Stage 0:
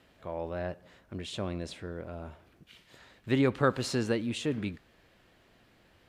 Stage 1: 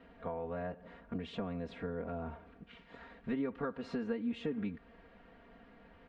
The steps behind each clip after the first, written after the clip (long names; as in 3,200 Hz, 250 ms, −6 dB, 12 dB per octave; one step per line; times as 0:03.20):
downward compressor 8 to 1, threshold −39 dBFS, peak gain reduction 18.5 dB
low-pass filter 1,800 Hz 12 dB per octave
comb filter 4.3 ms, depth 99%
level +2.5 dB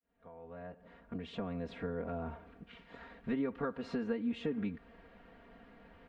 fade in at the beginning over 1.68 s
level +1 dB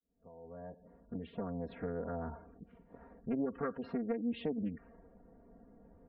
gate on every frequency bin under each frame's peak −20 dB strong
low-pass that shuts in the quiet parts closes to 440 Hz, open at −32 dBFS
highs frequency-modulated by the lows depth 0.31 ms